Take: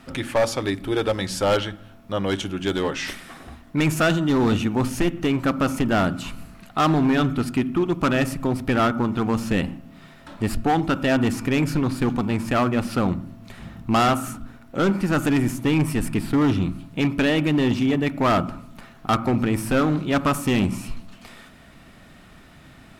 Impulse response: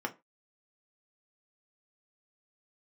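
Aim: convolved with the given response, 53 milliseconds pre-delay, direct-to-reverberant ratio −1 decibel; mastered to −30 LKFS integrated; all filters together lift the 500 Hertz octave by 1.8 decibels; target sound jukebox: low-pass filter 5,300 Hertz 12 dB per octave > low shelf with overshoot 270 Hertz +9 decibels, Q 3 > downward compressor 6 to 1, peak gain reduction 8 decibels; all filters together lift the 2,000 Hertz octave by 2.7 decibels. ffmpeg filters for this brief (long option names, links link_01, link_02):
-filter_complex "[0:a]equalizer=frequency=500:width_type=o:gain=6.5,equalizer=frequency=2000:width_type=o:gain=3.5,asplit=2[link_01][link_02];[1:a]atrim=start_sample=2205,adelay=53[link_03];[link_02][link_03]afir=irnorm=-1:irlink=0,volume=-3.5dB[link_04];[link_01][link_04]amix=inputs=2:normalize=0,lowpass=5300,lowshelf=frequency=270:width_type=q:width=3:gain=9,acompressor=threshold=-6dB:ratio=6,volume=-18dB"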